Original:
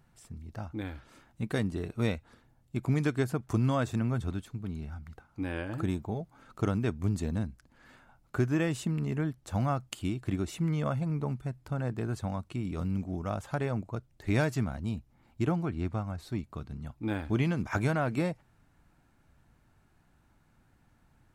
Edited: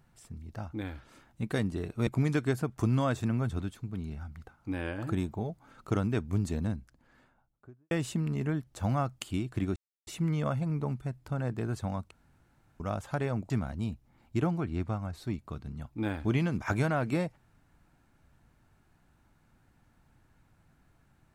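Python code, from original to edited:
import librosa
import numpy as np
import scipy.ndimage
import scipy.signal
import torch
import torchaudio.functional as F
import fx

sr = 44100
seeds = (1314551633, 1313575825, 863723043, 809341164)

y = fx.studio_fade_out(x, sr, start_s=7.31, length_s=1.31)
y = fx.edit(y, sr, fx.cut(start_s=2.07, length_s=0.71),
    fx.insert_silence(at_s=10.47, length_s=0.31),
    fx.room_tone_fill(start_s=12.51, length_s=0.69),
    fx.cut(start_s=13.9, length_s=0.65), tone=tone)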